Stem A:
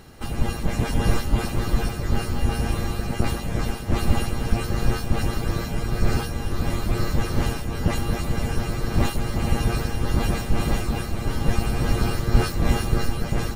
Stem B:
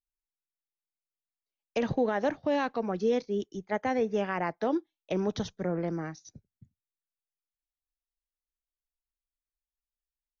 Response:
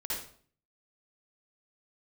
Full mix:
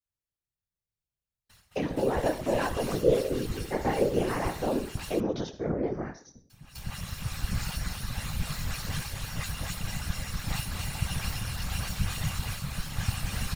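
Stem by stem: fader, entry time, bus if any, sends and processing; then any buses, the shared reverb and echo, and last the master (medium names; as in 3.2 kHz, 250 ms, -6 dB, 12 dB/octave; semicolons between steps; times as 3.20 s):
-1.5 dB, 1.50 s, muted 4.95–6.50 s, no send, echo send -3.5 dB, comb filter that takes the minimum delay 3.6 ms; amplifier tone stack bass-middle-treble 10-0-10; auto duck -19 dB, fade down 0.20 s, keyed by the second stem
+0.5 dB, 0.00 s, send -12.5 dB, no echo send, peaking EQ 390 Hz +6.5 dB 0.77 oct; detune thickener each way 25 cents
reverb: on, RT60 0.50 s, pre-delay 51 ms
echo: delay 252 ms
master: whisper effect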